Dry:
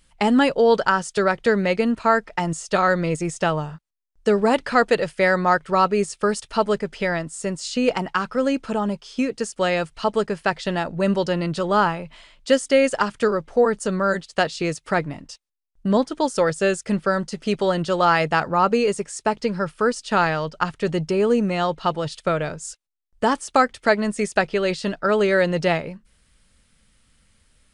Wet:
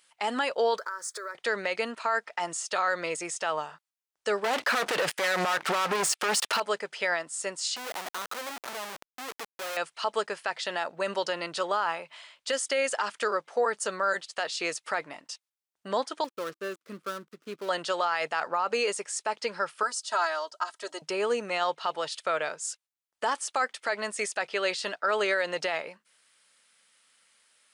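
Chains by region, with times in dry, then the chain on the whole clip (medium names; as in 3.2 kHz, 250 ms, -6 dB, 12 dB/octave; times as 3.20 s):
0.78–1.35 s: companding laws mixed up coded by mu + compression 10:1, threshold -28 dBFS + static phaser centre 770 Hz, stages 6
4.44–6.60 s: tone controls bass +6 dB, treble -5 dB + waveshaping leveller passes 5
7.76–9.77 s: compression 12:1, threshold -24 dBFS + distance through air 190 m + Schmitt trigger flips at -37.5 dBFS
16.24–17.69 s: dead-time distortion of 0.17 ms + FFT filter 330 Hz 0 dB, 830 Hz -20 dB, 1.2 kHz -7 dB, 1.8 kHz -15 dB
19.83–21.02 s: high-pass 1.1 kHz 6 dB/octave + peaking EQ 2.4 kHz -13 dB 1.2 oct + comb 3.1 ms, depth 93%
whole clip: high-pass 700 Hz 12 dB/octave; peak limiter -17 dBFS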